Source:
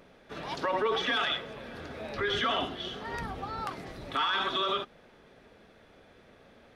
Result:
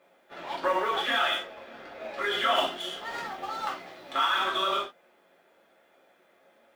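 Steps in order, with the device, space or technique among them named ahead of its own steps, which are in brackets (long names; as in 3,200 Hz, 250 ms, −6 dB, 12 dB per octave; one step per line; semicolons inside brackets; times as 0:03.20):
phone line with mismatched companding (band-pass filter 380–3,300 Hz; mu-law and A-law mismatch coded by A)
0:02.55–0:04.13: high-shelf EQ 3,000 Hz +8 dB
reverb whose tail is shaped and stops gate 100 ms falling, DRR −4 dB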